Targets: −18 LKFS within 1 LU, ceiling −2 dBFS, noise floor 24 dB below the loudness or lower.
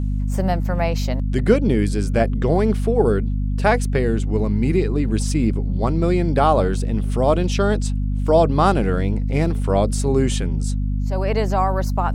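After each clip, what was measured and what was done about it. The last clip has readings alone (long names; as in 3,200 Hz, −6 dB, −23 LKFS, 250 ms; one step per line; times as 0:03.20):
mains hum 50 Hz; hum harmonics up to 250 Hz; level of the hum −19 dBFS; integrated loudness −20.0 LKFS; sample peak −2.5 dBFS; target loudness −18.0 LKFS
→ hum removal 50 Hz, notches 5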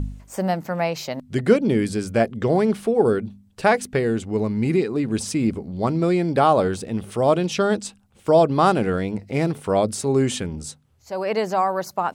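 mains hum none found; integrated loudness −21.5 LKFS; sample peak −3.5 dBFS; target loudness −18.0 LKFS
→ level +3.5 dB
brickwall limiter −2 dBFS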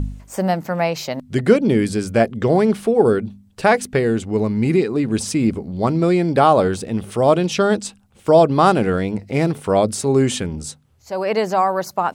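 integrated loudness −18.0 LKFS; sample peak −2.0 dBFS; background noise floor −53 dBFS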